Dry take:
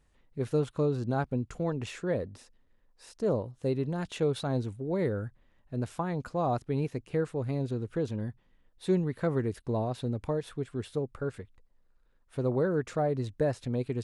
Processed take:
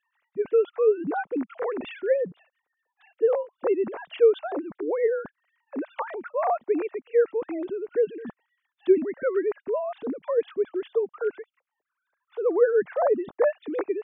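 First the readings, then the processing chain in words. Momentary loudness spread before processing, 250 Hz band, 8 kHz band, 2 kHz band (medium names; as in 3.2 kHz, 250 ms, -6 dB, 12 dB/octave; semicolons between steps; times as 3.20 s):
8 LU, 0.0 dB, under -25 dB, +6.0 dB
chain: formants replaced by sine waves; trim +5.5 dB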